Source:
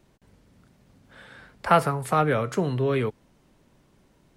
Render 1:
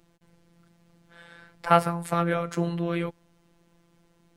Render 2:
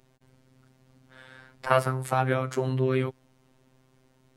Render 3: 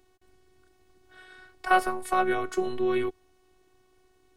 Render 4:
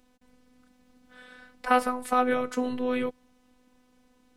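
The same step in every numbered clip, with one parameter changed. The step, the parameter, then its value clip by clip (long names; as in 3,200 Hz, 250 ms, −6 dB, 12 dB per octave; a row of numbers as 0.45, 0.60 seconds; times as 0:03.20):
phases set to zero, frequency: 170, 130, 370, 250 Hertz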